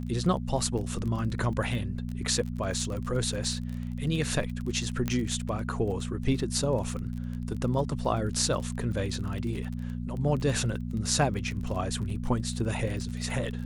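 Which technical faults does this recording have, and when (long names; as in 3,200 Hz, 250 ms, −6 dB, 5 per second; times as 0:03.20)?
surface crackle 28 per second −34 dBFS
mains hum 60 Hz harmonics 4 −34 dBFS
0:05.08: click −15 dBFS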